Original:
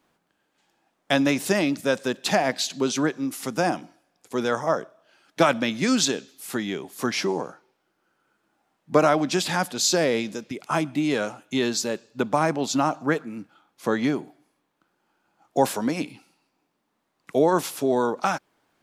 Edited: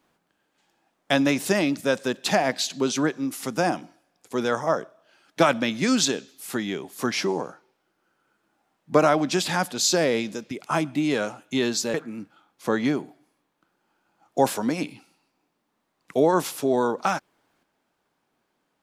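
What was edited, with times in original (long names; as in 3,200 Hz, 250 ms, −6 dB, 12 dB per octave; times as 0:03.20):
0:11.94–0:13.13: remove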